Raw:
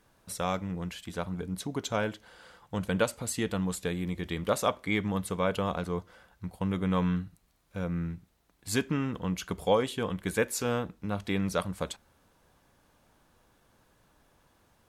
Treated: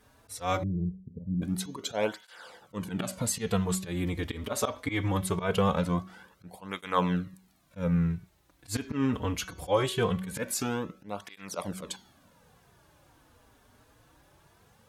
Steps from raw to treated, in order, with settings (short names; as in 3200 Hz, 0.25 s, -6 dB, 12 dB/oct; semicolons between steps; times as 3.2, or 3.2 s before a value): 10.52–11.54 compressor 2.5:1, threshold -34 dBFS, peak gain reduction 6.5 dB; auto swell 0.129 s; de-hum 187.3 Hz, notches 36; 0.63–1.42 inverse Chebyshev low-pass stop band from 1200 Hz, stop band 60 dB; tape flanging out of phase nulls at 0.22 Hz, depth 6.1 ms; gain +7.5 dB